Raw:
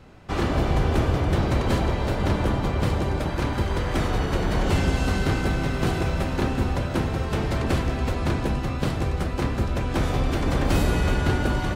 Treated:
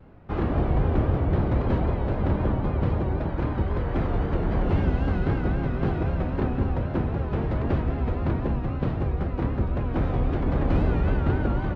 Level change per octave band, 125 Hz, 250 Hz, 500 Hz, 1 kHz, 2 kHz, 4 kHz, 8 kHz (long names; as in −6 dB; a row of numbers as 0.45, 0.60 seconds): −0.5 dB, −1.0 dB, −2.0 dB, −4.0 dB, −8.0 dB, −14.5 dB, below −25 dB